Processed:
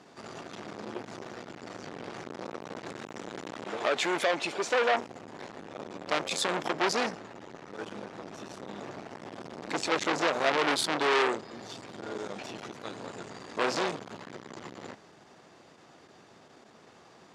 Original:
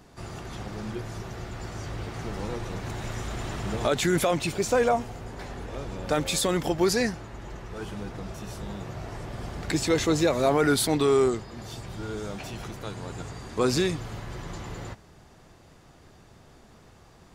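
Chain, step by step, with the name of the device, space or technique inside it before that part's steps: 3.64–4.94 s: tone controls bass -12 dB, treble -5 dB; public-address speaker with an overloaded transformer (transformer saturation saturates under 2.6 kHz; band-pass 240–6800 Hz); trim +2 dB

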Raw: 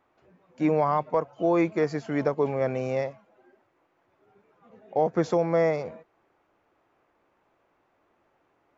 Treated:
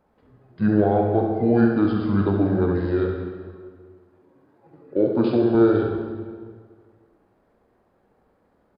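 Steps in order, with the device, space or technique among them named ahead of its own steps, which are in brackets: 3.09–5.55 s: high-pass 240 Hz 12 dB/octave; monster voice (pitch shift -6.5 st; bass shelf 120 Hz +7 dB; delay 70 ms -7 dB; reverberation RT60 1.8 s, pre-delay 21 ms, DRR 2 dB); trim +2 dB

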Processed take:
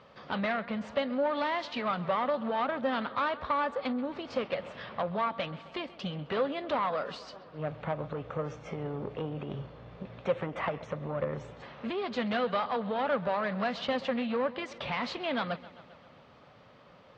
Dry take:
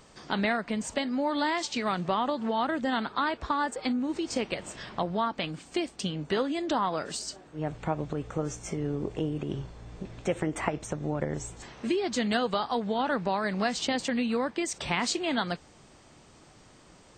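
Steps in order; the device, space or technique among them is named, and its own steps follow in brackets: analogue delay pedal into a guitar amplifier (bucket-brigade echo 132 ms, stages 4096, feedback 66%, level -20.5 dB; valve stage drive 25 dB, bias 0.4; cabinet simulation 88–3800 Hz, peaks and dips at 330 Hz -9 dB, 550 Hz +8 dB, 1.2 kHz +5 dB)

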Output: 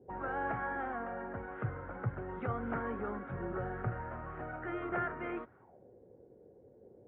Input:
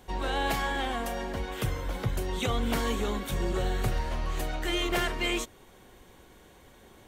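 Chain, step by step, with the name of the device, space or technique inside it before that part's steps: envelope filter bass rig (touch-sensitive low-pass 390–1300 Hz up, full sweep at -35.5 dBFS; cabinet simulation 62–2300 Hz, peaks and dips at 64 Hz -8 dB, 120 Hz +6 dB, 1.1 kHz -9 dB); trim -8 dB

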